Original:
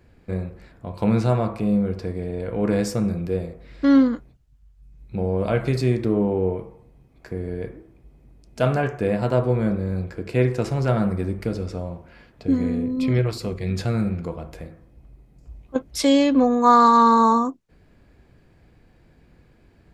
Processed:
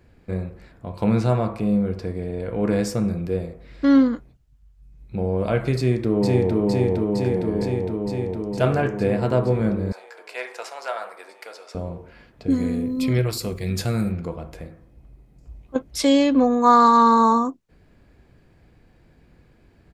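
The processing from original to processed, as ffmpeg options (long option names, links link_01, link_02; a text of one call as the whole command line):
ffmpeg -i in.wav -filter_complex "[0:a]asplit=2[link_01][link_02];[link_02]afade=type=in:start_time=5.76:duration=0.01,afade=type=out:start_time=6.58:duration=0.01,aecho=0:1:460|920|1380|1840|2300|2760|3220|3680|4140|4600|5060|5520:0.944061|0.755249|0.604199|0.483359|0.386687|0.30935|0.24748|0.197984|0.158387|0.12671|0.101368|0.0810942[link_03];[link_01][link_03]amix=inputs=2:normalize=0,asettb=1/sr,asplit=3[link_04][link_05][link_06];[link_04]atrim=end=9.924[link_07];[link_05]atrim=start=9.92:end=11.75,asetpts=PTS-STARTPTS,afade=type=in:duration=0.004:curve=qsin,afade=type=out:start_time=1.826:duration=0.004:curve=qsin,highpass=frequency=670:width=0.5412,highpass=frequency=670:width=1.3066[link_08];[link_06]atrim=start=11.746[link_09];[link_07][link_08]acrossfade=duration=0.004:curve1=hsin:curve2=qsin[link_10];[link_10][link_09]acrossfade=duration=0.004:curve1=qsin:curve2=hsin,asettb=1/sr,asplit=3[link_11][link_12][link_13];[link_11]atrim=end=12.504[link_14];[link_12]atrim=start=12.5:end=14.12,asetpts=PTS-STARTPTS,afade=type=in:duration=0.004:curve=qsin,afade=type=out:start_time=1.616:duration=0.004:curve=qsin,aemphasis=mode=production:type=50fm[link_15];[link_13]atrim=start=14.116[link_16];[link_14][link_15]acrossfade=duration=0.004:curve1=hsin:curve2=qsin[link_17];[link_17][link_16]acrossfade=duration=0.004:curve1=qsin:curve2=hsin" out.wav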